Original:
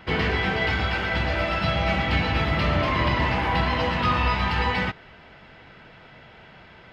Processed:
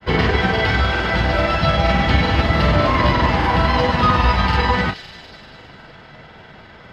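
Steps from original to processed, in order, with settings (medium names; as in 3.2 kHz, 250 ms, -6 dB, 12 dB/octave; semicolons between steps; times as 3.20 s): peaking EQ 2.5 kHz -5.5 dB 0.62 oct; feedback echo behind a high-pass 188 ms, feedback 65%, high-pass 4.2 kHz, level -5 dB; granulator, spray 33 ms, pitch spread up and down by 0 st; trim +8.5 dB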